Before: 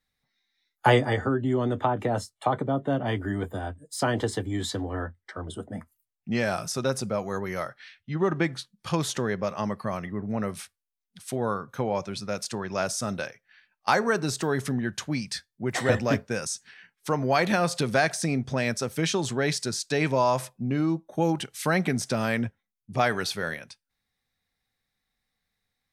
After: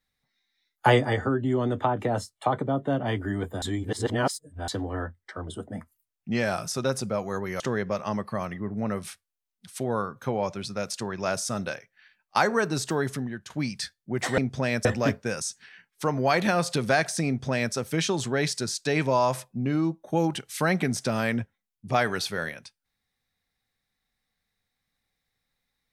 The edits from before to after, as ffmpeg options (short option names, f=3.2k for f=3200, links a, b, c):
-filter_complex "[0:a]asplit=7[a][b][c][d][e][f][g];[a]atrim=end=3.622[h];[b]atrim=start=3.618:end=4.682,asetpts=PTS-STARTPTS,areverse[i];[c]atrim=start=4.678:end=7.602[j];[d]atrim=start=9.118:end=15.02,asetpts=PTS-STARTPTS,afade=t=out:st=5.392:d=0.51:silence=0.237137[k];[e]atrim=start=15.02:end=15.902,asetpts=PTS-STARTPTS,afade=t=in:d=0.004:c=hsin:silence=0.237137[l];[f]atrim=start=18.318:end=18.792[m];[g]atrim=start=15.898[n];[h][i]acrossfade=d=0.004:c1=hsin:c2=hsin[o];[o][j]acrossfade=d=0.004:c1=hsin:c2=hsin[p];[k][l]concat=n=2:v=0:a=1[q];[p][q]acrossfade=d=0.004:c1=hsin:c2=hsin[r];[r][m]acrossfade=d=0.004:c1=hsin:c2=hsin[s];[s][n]acrossfade=d=0.004:c1=hsin:c2=hsin"